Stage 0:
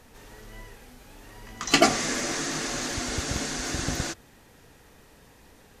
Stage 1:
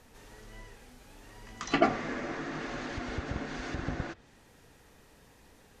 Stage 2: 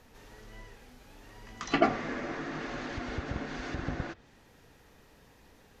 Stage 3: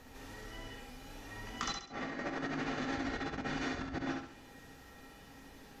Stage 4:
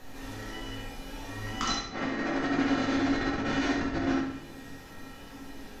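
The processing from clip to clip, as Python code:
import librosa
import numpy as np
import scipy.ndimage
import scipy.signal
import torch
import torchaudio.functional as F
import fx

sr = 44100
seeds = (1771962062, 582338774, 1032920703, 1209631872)

y1 = fx.env_lowpass_down(x, sr, base_hz=1900.0, full_db=-26.0)
y1 = y1 * librosa.db_to_amplitude(-4.5)
y2 = fx.peak_eq(y1, sr, hz=8800.0, db=-6.5, octaves=0.64)
y3 = fx.comb_fb(y2, sr, f0_hz=270.0, decay_s=0.24, harmonics='odd', damping=0.0, mix_pct=80)
y3 = fx.over_compress(y3, sr, threshold_db=-50.0, ratio=-0.5)
y3 = fx.echo_feedback(y3, sr, ms=67, feedback_pct=38, wet_db=-4.5)
y3 = y3 * librosa.db_to_amplitude(9.5)
y4 = fx.room_shoebox(y3, sr, seeds[0], volume_m3=110.0, walls='mixed', distance_m=0.99)
y4 = y4 * librosa.db_to_amplitude(4.0)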